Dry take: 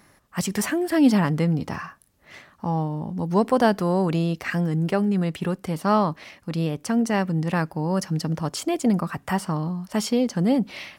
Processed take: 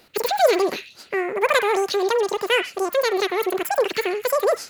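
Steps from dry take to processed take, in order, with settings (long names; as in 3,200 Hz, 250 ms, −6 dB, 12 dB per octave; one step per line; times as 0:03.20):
dynamic equaliser 600 Hz, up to −5 dB, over −34 dBFS, Q 1.8
on a send: echo through a band-pass that steps 110 ms, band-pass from 710 Hz, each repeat 0.7 octaves, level −8 dB
on the sum: wrong playback speed 33 rpm record played at 78 rpm
level +2.5 dB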